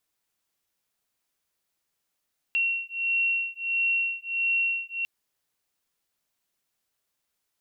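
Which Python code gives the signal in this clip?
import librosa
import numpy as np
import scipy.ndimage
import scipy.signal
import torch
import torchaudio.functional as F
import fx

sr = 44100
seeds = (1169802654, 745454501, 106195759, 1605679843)

y = fx.two_tone_beats(sr, length_s=2.5, hz=2730.0, beat_hz=1.5, level_db=-27.0)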